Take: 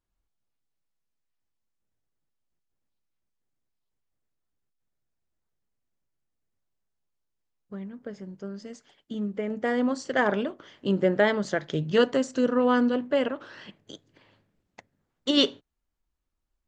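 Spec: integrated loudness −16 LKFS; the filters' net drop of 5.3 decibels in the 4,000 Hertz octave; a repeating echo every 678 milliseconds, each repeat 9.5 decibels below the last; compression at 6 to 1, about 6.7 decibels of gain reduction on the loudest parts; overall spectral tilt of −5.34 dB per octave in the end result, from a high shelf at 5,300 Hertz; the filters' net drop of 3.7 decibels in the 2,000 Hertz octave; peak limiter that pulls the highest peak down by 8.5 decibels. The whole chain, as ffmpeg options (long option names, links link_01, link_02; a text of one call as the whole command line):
ffmpeg -i in.wav -af "equalizer=frequency=2000:width_type=o:gain=-4,equalizer=frequency=4000:width_type=o:gain=-8,highshelf=frequency=5300:gain=6.5,acompressor=threshold=-24dB:ratio=6,alimiter=limit=-23.5dB:level=0:latency=1,aecho=1:1:678|1356|2034|2712:0.335|0.111|0.0365|0.012,volume=18.5dB" out.wav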